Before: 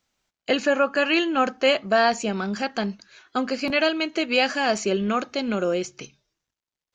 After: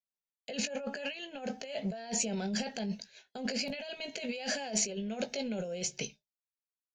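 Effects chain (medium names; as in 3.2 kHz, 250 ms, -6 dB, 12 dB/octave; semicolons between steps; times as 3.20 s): expander -42 dBFS; compressor with a negative ratio -31 dBFS, ratio -1; static phaser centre 320 Hz, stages 6; doubling 18 ms -10 dB; trim -3.5 dB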